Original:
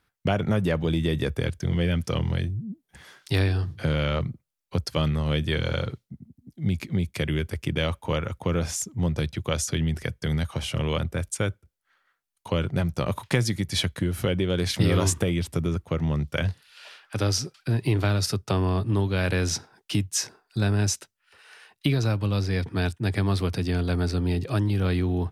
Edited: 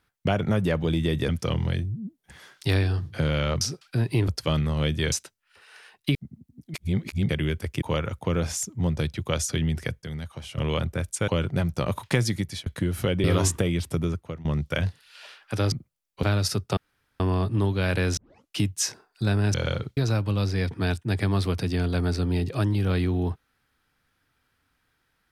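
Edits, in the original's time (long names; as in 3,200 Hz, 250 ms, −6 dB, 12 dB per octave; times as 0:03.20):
0:01.29–0:01.94: remove
0:04.26–0:04.77: swap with 0:17.34–0:18.01
0:05.61–0:06.04: swap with 0:20.89–0:21.92
0:06.63–0:07.18: reverse
0:07.71–0:08.01: remove
0:10.21–0:10.77: clip gain −8.5 dB
0:11.47–0:12.48: remove
0:13.60–0:13.86: fade out
0:14.44–0:14.86: remove
0:15.68–0:16.07: fade out, to −21 dB
0:18.55: splice in room tone 0.43 s
0:19.52: tape start 0.39 s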